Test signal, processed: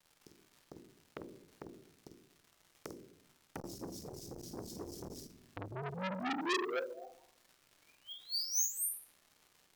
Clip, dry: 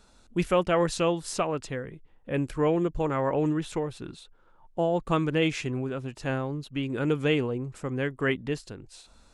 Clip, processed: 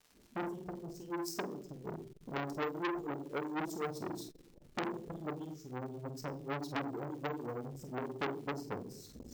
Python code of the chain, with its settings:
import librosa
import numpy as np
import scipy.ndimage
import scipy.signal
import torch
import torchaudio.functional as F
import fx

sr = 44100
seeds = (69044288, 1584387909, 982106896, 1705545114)

y = fx.recorder_agc(x, sr, target_db=-15.5, rise_db_per_s=56.0, max_gain_db=30)
y = fx.dereverb_blind(y, sr, rt60_s=1.1)
y = scipy.signal.sosfilt(scipy.signal.cheby1(4, 1.0, [400.0, 5300.0], 'bandstop', fs=sr, output='sos'), y)
y = fx.low_shelf(y, sr, hz=350.0, db=9.0)
y = fx.wah_lfo(y, sr, hz=4.1, low_hz=560.0, high_hz=3200.0, q=4.7)
y = fx.dmg_crackle(y, sr, seeds[0], per_s=350.0, level_db=-60.0)
y = fx.doubler(y, sr, ms=49.0, db=-7)
y = fx.room_shoebox(y, sr, seeds[1], volume_m3=130.0, walls='mixed', distance_m=0.43)
y = np.repeat(y[::2], 2)[:len(y)]
y = fx.transformer_sat(y, sr, knee_hz=3100.0)
y = y * librosa.db_to_amplitude(7.0)